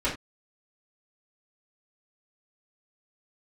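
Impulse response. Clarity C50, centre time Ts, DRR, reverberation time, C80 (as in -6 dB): 8.5 dB, 24 ms, -11.0 dB, not exponential, 15.5 dB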